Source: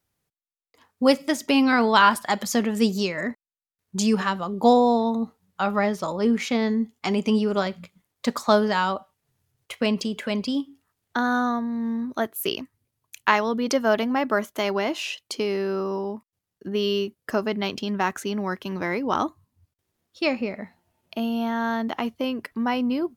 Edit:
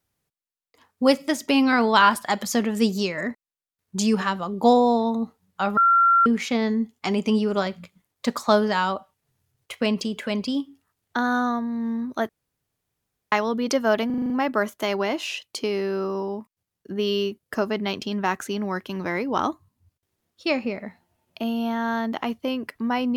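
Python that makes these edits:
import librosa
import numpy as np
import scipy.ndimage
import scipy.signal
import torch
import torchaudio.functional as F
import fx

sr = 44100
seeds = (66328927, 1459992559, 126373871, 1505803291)

y = fx.edit(x, sr, fx.bleep(start_s=5.77, length_s=0.49, hz=1370.0, db=-13.5),
    fx.room_tone_fill(start_s=12.29, length_s=1.03),
    fx.stutter(start_s=14.06, slice_s=0.04, count=7), tone=tone)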